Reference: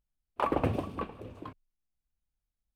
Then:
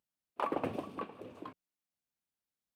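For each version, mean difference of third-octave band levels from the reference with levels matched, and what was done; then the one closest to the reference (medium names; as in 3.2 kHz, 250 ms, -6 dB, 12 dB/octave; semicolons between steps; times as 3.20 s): 2.5 dB: in parallel at +0.5 dB: compression, threshold -42 dBFS, peak gain reduction 17.5 dB; on the sum: high-pass 200 Hz 12 dB/octave; trim -6.5 dB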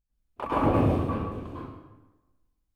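6.5 dB: bass shelf 330 Hz +8.5 dB; plate-style reverb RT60 1.1 s, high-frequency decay 0.75×, pre-delay 90 ms, DRR -9.5 dB; trim -7 dB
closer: first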